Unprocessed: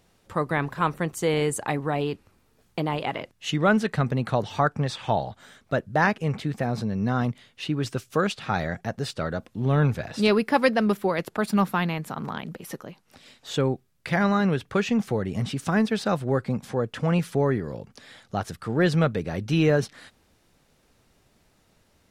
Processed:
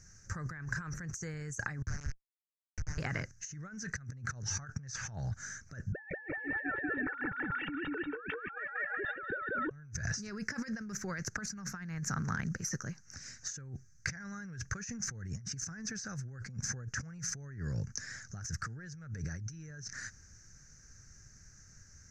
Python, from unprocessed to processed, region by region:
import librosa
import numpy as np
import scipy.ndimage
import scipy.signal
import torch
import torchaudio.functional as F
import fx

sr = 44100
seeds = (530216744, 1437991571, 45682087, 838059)

y = fx.chain(x, sr, fx.highpass(hz=1200.0, slope=12),
    fx.schmitt(flips_db=-32.0),
    fx.air_absorb(metres=100.0), at=(1.82, 2.98))
y = fx.chain(y, sr, fx.sine_speech(),
    fx.comb(ms=2.2, depth=0.83),
    fx.echo_feedback(ms=187, feedback_pct=42, wet_db=-3), at=(5.92, 9.71))
y = fx.curve_eq(y, sr, hz=(120.0, 270.0, 390.0, 670.0, 1000.0, 1600.0, 3400.0, 6200.0, 9000.0), db=(0, -16, -18, -22, -21, 0, -29, 14, -16))
y = fx.over_compress(y, sr, threshold_db=-42.0, ratio=-1.0)
y = fx.high_shelf(y, sr, hz=11000.0, db=-10.0)
y = y * librosa.db_to_amplitude(1.5)